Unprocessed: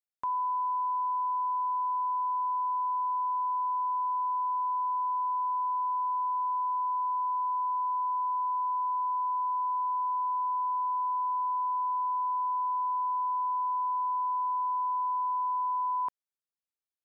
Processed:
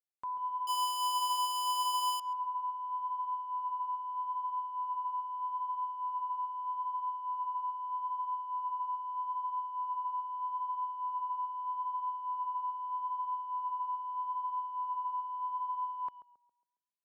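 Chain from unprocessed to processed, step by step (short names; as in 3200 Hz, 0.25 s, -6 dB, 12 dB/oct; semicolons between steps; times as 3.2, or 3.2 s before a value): 0.67–2.2 infinite clipping; limiter -31 dBFS, peak gain reduction 5 dB; tape echo 0.135 s, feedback 50%, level -6 dB, low-pass 1000 Hz; upward expander 1.5:1, over -48 dBFS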